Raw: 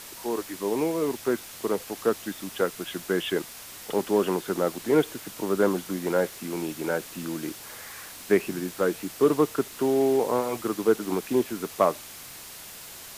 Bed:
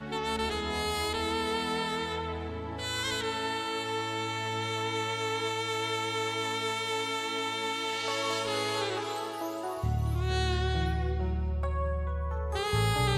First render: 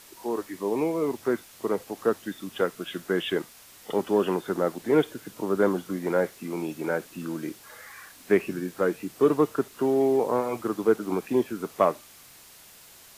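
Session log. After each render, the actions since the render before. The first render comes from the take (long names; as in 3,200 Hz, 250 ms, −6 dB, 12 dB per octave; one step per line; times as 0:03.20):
noise reduction from a noise print 8 dB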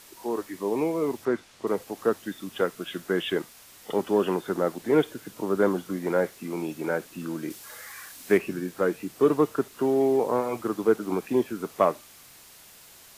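0:01.25–0:01.67: high-frequency loss of the air 62 metres
0:07.50–0:08.38: high-shelf EQ 3,400 Hz +7 dB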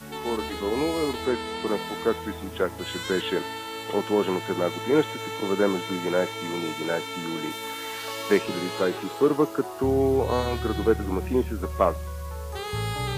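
mix in bed −2 dB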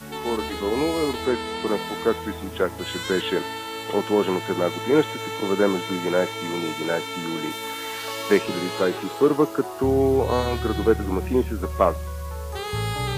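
level +2.5 dB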